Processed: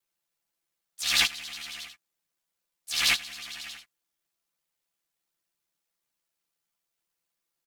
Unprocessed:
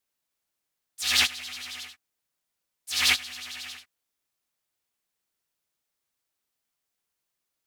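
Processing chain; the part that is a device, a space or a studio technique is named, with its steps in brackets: ring-modulated robot voice (ring modulator 37 Hz; comb 5.9 ms, depth 72%)

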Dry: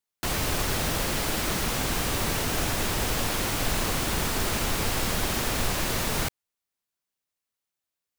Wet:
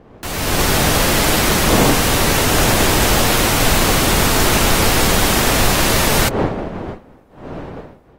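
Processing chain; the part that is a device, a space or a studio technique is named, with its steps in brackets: smartphone video outdoors (wind noise 500 Hz -38 dBFS; level rider gain up to 13.5 dB; AAC 48 kbps 48 kHz)

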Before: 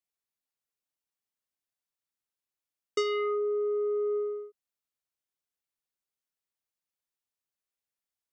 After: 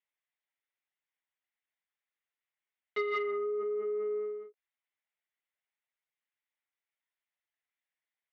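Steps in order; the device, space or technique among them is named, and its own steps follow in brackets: talking toy (LPC vocoder at 8 kHz pitch kept; high-pass 450 Hz 12 dB/octave; peaking EQ 2 kHz +10 dB 0.48 oct; saturation -22.5 dBFS, distortion -24 dB)

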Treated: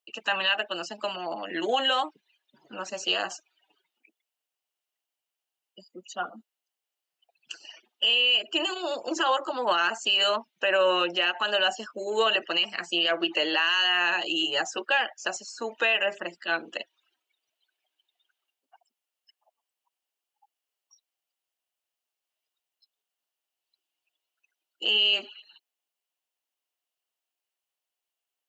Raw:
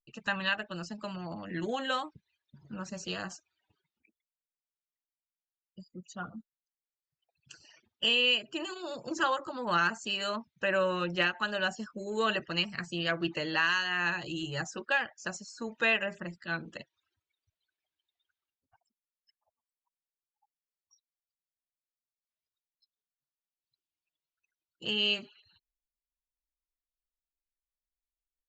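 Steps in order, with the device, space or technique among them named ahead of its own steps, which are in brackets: laptop speaker (high-pass 300 Hz 24 dB/octave; peaking EQ 730 Hz +6.5 dB 0.54 oct; peaking EQ 2.9 kHz +10 dB 0.27 oct; peak limiter -21 dBFS, peak gain reduction 11.5 dB); trim +6.5 dB

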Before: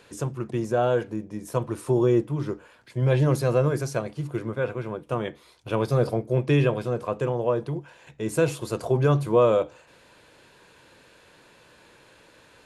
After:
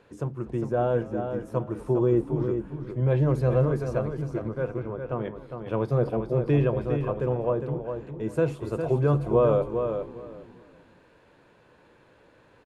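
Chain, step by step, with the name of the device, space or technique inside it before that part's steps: 4.38–5.24 s: distance through air 110 m; frequency-shifting echo 244 ms, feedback 53%, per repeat -80 Hz, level -19 dB; through cloth (treble shelf 2.6 kHz -17 dB); feedback delay 406 ms, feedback 18%, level -7 dB; trim -1.5 dB

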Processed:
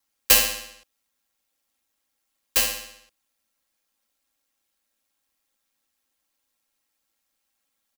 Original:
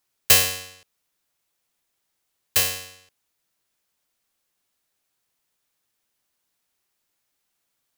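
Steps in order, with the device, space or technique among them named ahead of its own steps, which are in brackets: ring-modulated robot voice (ring modulator 54 Hz; comb 3.7 ms, depth 79%)

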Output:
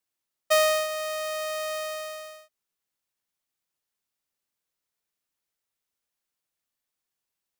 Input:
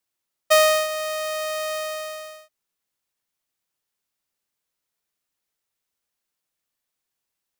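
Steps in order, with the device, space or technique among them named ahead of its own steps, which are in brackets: parallel distortion (in parallel at -12 dB: hard clipper -24.5 dBFS, distortion -4 dB); on the sum: trim -5.5 dB

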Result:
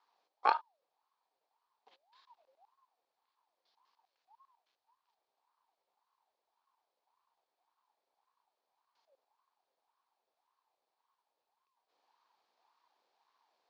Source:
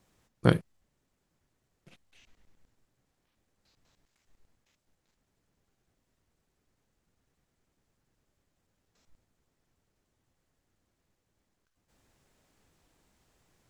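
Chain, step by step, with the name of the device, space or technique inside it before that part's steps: voice changer toy (ring modulator with a swept carrier 810 Hz, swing 35%, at 1.8 Hz; cabinet simulation 570–4700 Hz, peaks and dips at 580 Hz -7 dB, 920 Hz +4 dB, 1.4 kHz -5 dB, 2 kHz -5 dB, 2.8 kHz -4 dB, 4.4 kHz +4 dB); trim -2.5 dB

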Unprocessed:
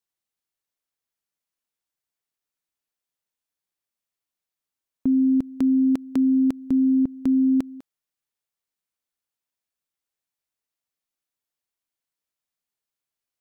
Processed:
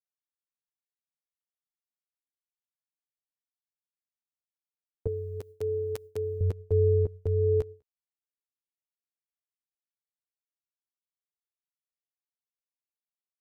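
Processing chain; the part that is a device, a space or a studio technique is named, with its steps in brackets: alien voice (ring modulator 170 Hz; flange 0.17 Hz, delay 8.6 ms, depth 9.1 ms, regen +6%); gate with hold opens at -34 dBFS; 5.07–6.41 s: tilt EQ +4 dB/octave

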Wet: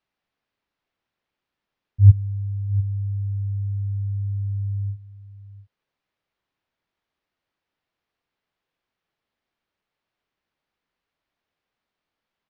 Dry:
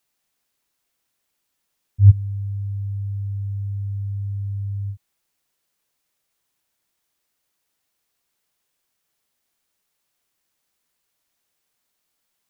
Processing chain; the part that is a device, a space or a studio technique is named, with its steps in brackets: shout across a valley (distance through air 270 m; echo from a far wall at 120 m, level -16 dB)

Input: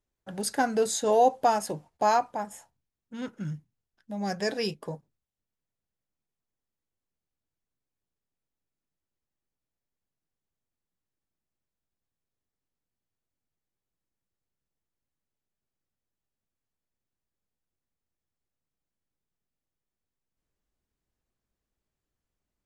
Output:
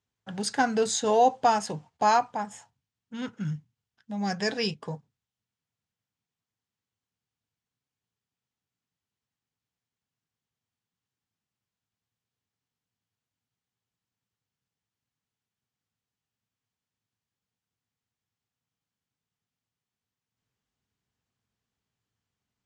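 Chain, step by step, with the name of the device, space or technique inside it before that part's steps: car door speaker (cabinet simulation 97–7700 Hz, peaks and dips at 110 Hz +7 dB, 340 Hz -9 dB, 580 Hz -8 dB, 3.1 kHz +3 dB); trim +3 dB

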